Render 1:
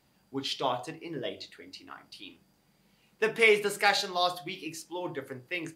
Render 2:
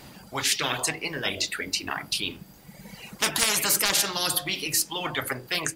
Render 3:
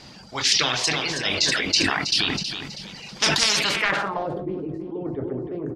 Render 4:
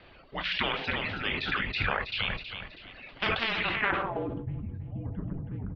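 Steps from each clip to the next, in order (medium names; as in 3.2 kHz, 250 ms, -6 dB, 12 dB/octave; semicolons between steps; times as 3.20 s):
reverb removal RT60 1.8 s; level rider gain up to 4.5 dB; spectrum-flattening compressor 10:1
feedback delay 322 ms, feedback 42%, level -9 dB; low-pass sweep 5.3 kHz -> 380 Hz, 3.53–4.43 s; decay stretcher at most 32 dB/s
mistuned SSB -230 Hz 240–3400 Hz; trim -5 dB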